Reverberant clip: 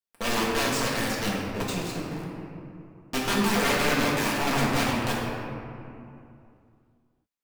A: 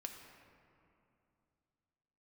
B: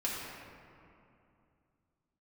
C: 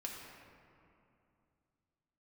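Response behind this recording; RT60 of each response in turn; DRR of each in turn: B; 2.7, 2.6, 2.7 seconds; 2.5, −6.5, −2.0 decibels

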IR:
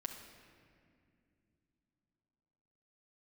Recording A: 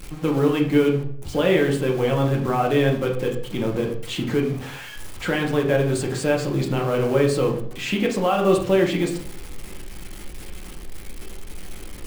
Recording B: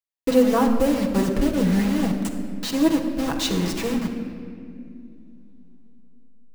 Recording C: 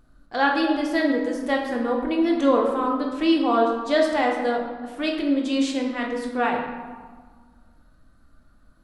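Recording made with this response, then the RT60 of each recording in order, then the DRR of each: B; 0.60, 2.4, 1.6 seconds; 0.0, 0.0, −1.0 decibels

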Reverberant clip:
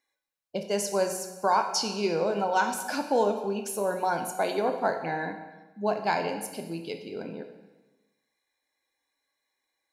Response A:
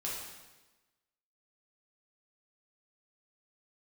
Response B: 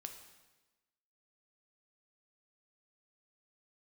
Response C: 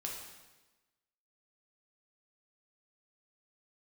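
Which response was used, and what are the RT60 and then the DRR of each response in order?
B; 1.2, 1.2, 1.2 seconds; −6.0, 5.0, −2.0 decibels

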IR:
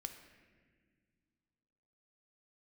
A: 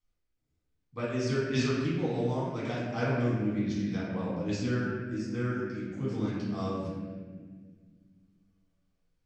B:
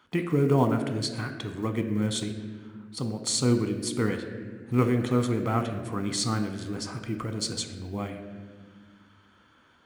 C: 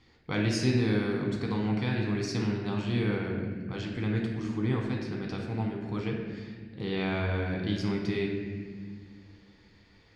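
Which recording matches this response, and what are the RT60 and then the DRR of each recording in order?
B; 1.7 s, non-exponential decay, 1.7 s; −8.5, 6.0, −1.0 decibels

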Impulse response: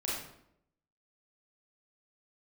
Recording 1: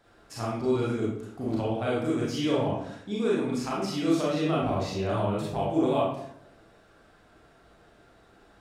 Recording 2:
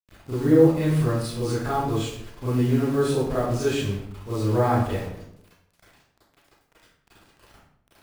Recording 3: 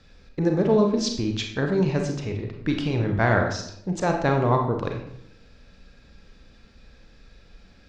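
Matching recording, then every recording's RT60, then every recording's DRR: 1; 0.75, 0.75, 0.75 seconds; −6.5, −11.5, 2.5 decibels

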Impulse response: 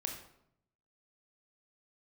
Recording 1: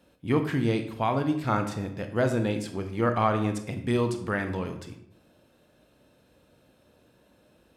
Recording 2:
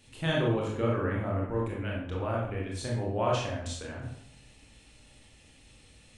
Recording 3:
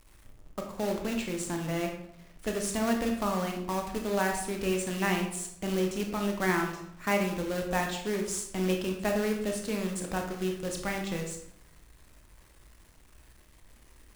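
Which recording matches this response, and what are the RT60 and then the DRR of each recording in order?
3; 0.75, 0.75, 0.75 seconds; 6.5, −3.5, 2.0 decibels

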